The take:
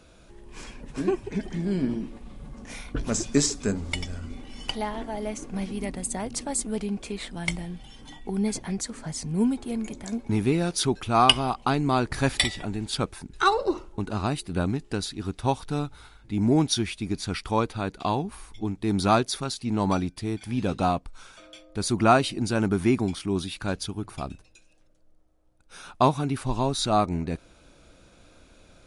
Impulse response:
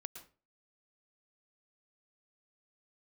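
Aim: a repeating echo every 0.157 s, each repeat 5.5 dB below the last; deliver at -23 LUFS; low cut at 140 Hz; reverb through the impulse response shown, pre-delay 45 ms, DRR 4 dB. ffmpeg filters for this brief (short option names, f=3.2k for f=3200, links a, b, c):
-filter_complex "[0:a]highpass=140,aecho=1:1:157|314|471|628|785|942|1099:0.531|0.281|0.149|0.079|0.0419|0.0222|0.0118,asplit=2[a][b];[1:a]atrim=start_sample=2205,adelay=45[c];[b][c]afir=irnorm=-1:irlink=0,volume=0dB[d];[a][d]amix=inputs=2:normalize=0,volume=1.5dB"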